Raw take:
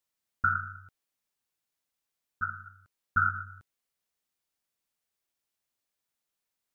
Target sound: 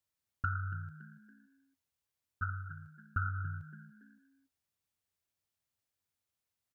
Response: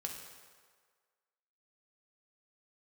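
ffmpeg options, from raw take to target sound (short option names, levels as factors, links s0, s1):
-filter_complex "[0:a]equalizer=f=90:t=o:w=0.99:g=14.5,acompressor=threshold=0.0447:ratio=6,asplit=2[s0][s1];[s1]asplit=3[s2][s3][s4];[s2]adelay=282,afreqshift=59,volume=0.2[s5];[s3]adelay=564,afreqshift=118,volume=0.07[s6];[s4]adelay=846,afreqshift=177,volume=0.0245[s7];[s5][s6][s7]amix=inputs=3:normalize=0[s8];[s0][s8]amix=inputs=2:normalize=0,volume=0.631"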